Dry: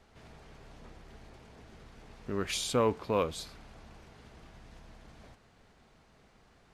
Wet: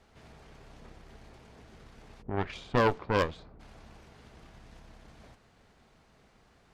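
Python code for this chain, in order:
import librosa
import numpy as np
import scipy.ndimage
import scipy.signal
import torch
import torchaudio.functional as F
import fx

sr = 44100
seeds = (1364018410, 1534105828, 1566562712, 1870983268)

y = fx.env_lowpass(x, sr, base_hz=360.0, full_db=-23.0, at=(2.21, 3.59), fade=0.02)
y = fx.cheby_harmonics(y, sr, harmonics=(4,), levels_db=(-7,), full_scale_db=-16.0)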